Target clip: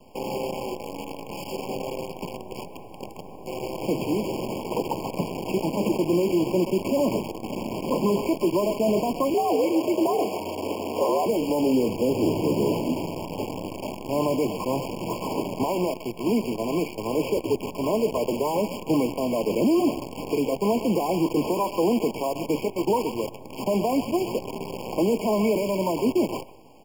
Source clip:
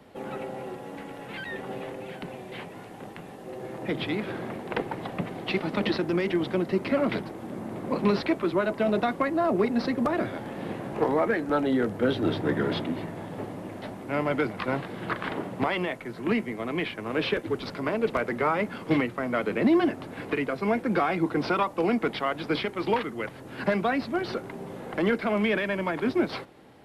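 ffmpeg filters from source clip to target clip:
ffmpeg -i in.wav -filter_complex "[0:a]lowpass=frequency=1700:width=0.5412,lowpass=frequency=1700:width=1.3066,lowshelf=frequency=190:gain=-7,bandreject=frequency=1100:width=25,asplit=2[link_01][link_02];[link_02]adelay=130,highpass=300,lowpass=3400,asoftclip=type=hard:threshold=-23dB,volume=-13dB[link_03];[link_01][link_03]amix=inputs=2:normalize=0,alimiter=limit=-21dB:level=0:latency=1:release=12,adynamicequalizer=threshold=0.00251:dfrequency=740:dqfactor=7.6:tfrequency=740:tqfactor=7.6:attack=5:release=100:ratio=0.375:range=3:mode=cutabove:tftype=bell,acrusher=bits=7:dc=4:mix=0:aa=0.000001,asettb=1/sr,asplit=3[link_04][link_05][link_06];[link_04]atrim=end=9.344[link_07];[link_05]atrim=start=9.34:end=11.26,asetpts=PTS-STARTPTS,afade=type=in:duration=0.004:curve=qsin,afade=type=out:start_time=1.916:duration=0.004:curve=qsin,afreqshift=89[link_08];[link_06]atrim=start=11.256[link_09];[link_07][link_08]acrossfade=duration=0.004:curve1=hsin:curve2=qsin[link_10];[link_10][link_09]acrossfade=duration=0.004:curve1=qsin:curve2=hsin,afftfilt=real='re*eq(mod(floor(b*sr/1024/1100),2),0)':imag='im*eq(mod(floor(b*sr/1024/1100),2),0)':win_size=1024:overlap=0.75,volume=7dB" out.wav

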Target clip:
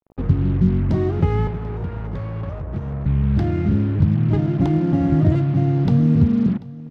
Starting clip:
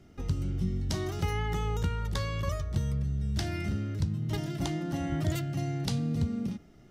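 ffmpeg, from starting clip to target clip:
ffmpeg -i in.wav -filter_complex "[0:a]equalizer=frequency=210:width=0.36:gain=10,asettb=1/sr,asplit=3[link_01][link_02][link_03];[link_01]atrim=end=1.474[link_04];[link_02]atrim=start=1.47:end=3.06,asetpts=PTS-STARTPTS,afade=type=in:duration=0.004:curve=qsin,afade=type=out:start_time=1.586:duration=0.004:curve=qsin,acrossover=split=170|360[link_05][link_06][link_07];[link_05]acompressor=threshold=-33dB:ratio=4[link_08];[link_06]acompressor=threshold=-43dB:ratio=4[link_09];[link_07]acompressor=threshold=-42dB:ratio=4[link_10];[link_08][link_09][link_10]amix=inputs=3:normalize=0[link_11];[link_03]atrim=start=3.056[link_12];[link_04][link_11]acrossfade=duration=0.004:curve1=hsin:curve2=qsin[link_13];[link_13][link_12]acrossfade=duration=0.004:curve1=qsin:curve2=hsin,acrusher=bits=5:mix=0:aa=0.5,adynamicsmooth=sensitivity=1:basefreq=1300,aecho=1:1:739:0.106,volume=5.5dB" out.wav

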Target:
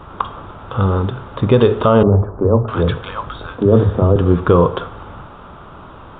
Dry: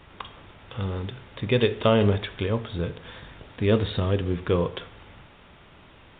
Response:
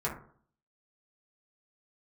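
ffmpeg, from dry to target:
-filter_complex "[0:a]highshelf=frequency=1600:width_type=q:width=3:gain=-7.5,asettb=1/sr,asplit=3[link_01][link_02][link_03];[link_01]atrim=end=2.034[link_04];[link_02]atrim=start=2.03:end=4.16,asetpts=PTS-STARTPTS,afade=type=in:duration=0.004:curve=qsin,afade=type=out:start_time=2.126:duration=0.004:curve=qsin,acrossover=split=180|1000[link_05][link_06][link_07];[link_05]adelay=40[link_08];[link_07]adelay=650[link_09];[link_08][link_06][link_09]amix=inputs=3:normalize=0,atrim=end_sample=93933[link_10];[link_03]atrim=start=4.156[link_11];[link_04][link_10]acrossfade=duration=0.004:curve1=hsin:curve2=qsin[link_12];[link_12][link_11]acrossfade=duration=0.004:curve1=qsin:curve2=hsin,alimiter=level_in=14.5dB:limit=-1dB:release=50:level=0:latency=1,volume=-1dB"

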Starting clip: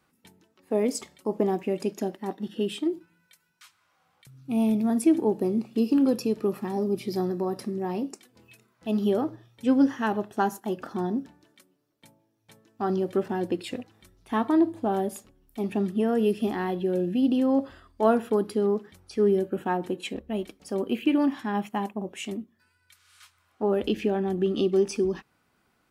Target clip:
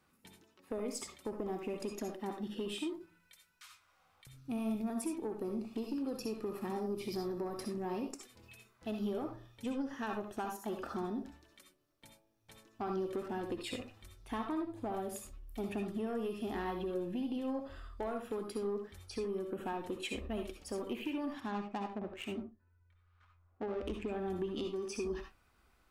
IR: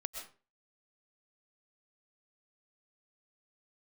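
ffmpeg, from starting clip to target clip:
-filter_complex "[0:a]asubboost=boost=6:cutoff=61,acompressor=threshold=-30dB:ratio=10,asoftclip=type=tanh:threshold=-26dB,asplit=3[link_01][link_02][link_03];[link_01]afade=type=out:start_time=21.39:duration=0.02[link_04];[link_02]adynamicsmooth=sensitivity=7:basefreq=720,afade=type=in:start_time=21.39:duration=0.02,afade=type=out:start_time=24.11:duration=0.02[link_05];[link_03]afade=type=in:start_time=24.11:duration=0.02[link_06];[link_04][link_05][link_06]amix=inputs=3:normalize=0[link_07];[1:a]atrim=start_sample=2205,afade=type=out:start_time=0.3:duration=0.01,atrim=end_sample=13671,asetrate=83790,aresample=44100[link_08];[link_07][link_08]afir=irnorm=-1:irlink=0,volume=4.5dB"

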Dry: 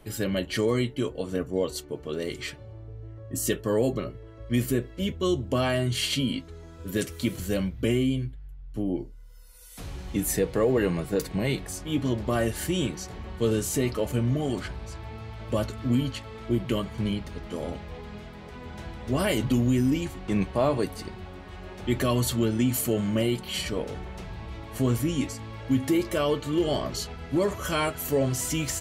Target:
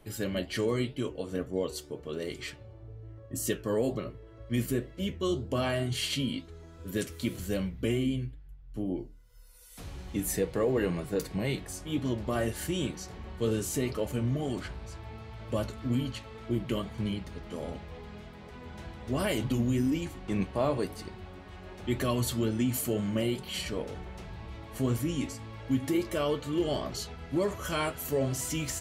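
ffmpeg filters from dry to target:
ffmpeg -i in.wav -af "flanger=delay=9:depth=5.3:regen=-79:speed=2:shape=triangular" out.wav

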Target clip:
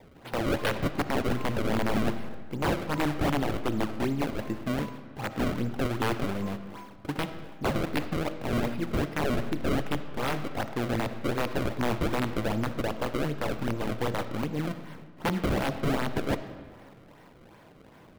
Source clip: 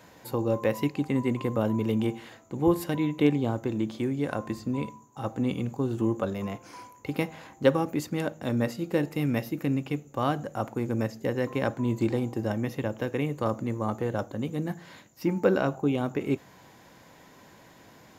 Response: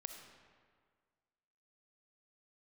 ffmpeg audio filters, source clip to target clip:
-filter_complex "[0:a]acrusher=samples=29:mix=1:aa=0.000001:lfo=1:lforange=46.4:lforate=2.6,aeval=exprs='(mod(10*val(0)+1,2)-1)/10':channel_layout=same,asplit=2[link_01][link_02];[1:a]atrim=start_sample=2205,lowpass=4200[link_03];[link_02][link_03]afir=irnorm=-1:irlink=0,volume=4.5dB[link_04];[link_01][link_04]amix=inputs=2:normalize=0,volume=-6dB"

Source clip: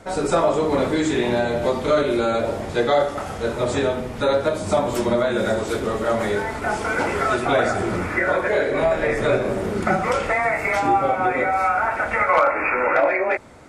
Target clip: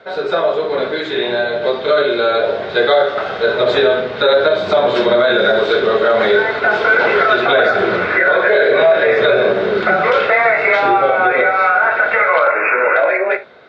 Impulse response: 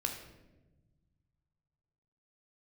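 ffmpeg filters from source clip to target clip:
-filter_complex "[0:a]lowshelf=frequency=490:gain=-5.5,dynaudnorm=framelen=720:gausssize=7:maxgain=11.5dB,highpass=180,equalizer=frequency=280:width_type=q:width=4:gain=-6,equalizer=frequency=420:width_type=q:width=4:gain=7,equalizer=frequency=650:width_type=q:width=4:gain=4,equalizer=frequency=950:width_type=q:width=4:gain=-4,equalizer=frequency=1500:width_type=q:width=4:gain=7,equalizer=frequency=3800:width_type=q:width=4:gain=10,lowpass=frequency=4200:width=0.5412,lowpass=frequency=4200:width=1.3066,asplit=2[link_01][link_02];[1:a]atrim=start_sample=2205,atrim=end_sample=3528,lowpass=6800[link_03];[link_02][link_03]afir=irnorm=-1:irlink=0,volume=-4dB[link_04];[link_01][link_04]amix=inputs=2:normalize=0,alimiter=level_in=0dB:limit=-1dB:release=50:level=0:latency=1,volume=-2.5dB"

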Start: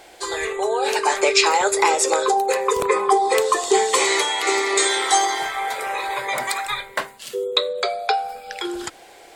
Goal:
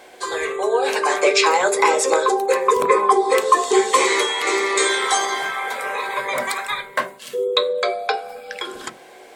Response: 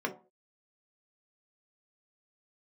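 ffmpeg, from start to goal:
-filter_complex "[0:a]asplit=2[link_01][link_02];[1:a]atrim=start_sample=2205,lowshelf=frequency=180:gain=7[link_03];[link_02][link_03]afir=irnorm=-1:irlink=0,volume=-4.5dB[link_04];[link_01][link_04]amix=inputs=2:normalize=0,volume=-4dB"

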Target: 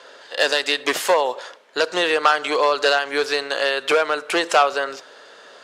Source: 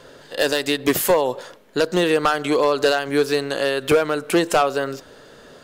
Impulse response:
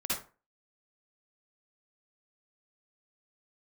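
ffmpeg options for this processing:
-filter_complex "[0:a]highpass=650,lowpass=6400,asplit=2[link_01][link_02];[1:a]atrim=start_sample=2205,asetrate=39690,aresample=44100[link_03];[link_02][link_03]afir=irnorm=-1:irlink=0,volume=-28.5dB[link_04];[link_01][link_04]amix=inputs=2:normalize=0,volume=4dB" -ar 48000 -c:a aac -b:a 96k

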